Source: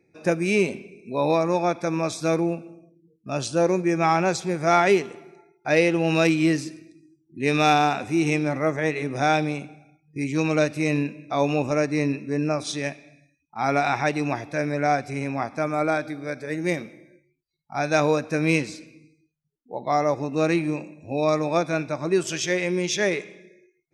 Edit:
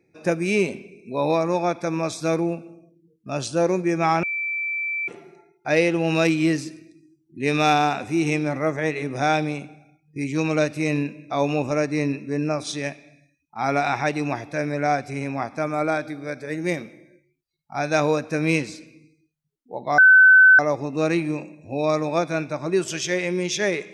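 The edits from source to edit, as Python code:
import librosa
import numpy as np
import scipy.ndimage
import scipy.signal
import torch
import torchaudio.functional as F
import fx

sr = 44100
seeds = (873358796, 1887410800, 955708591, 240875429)

y = fx.edit(x, sr, fx.bleep(start_s=4.23, length_s=0.85, hz=2330.0, db=-23.5),
    fx.insert_tone(at_s=19.98, length_s=0.61, hz=1520.0, db=-8.0), tone=tone)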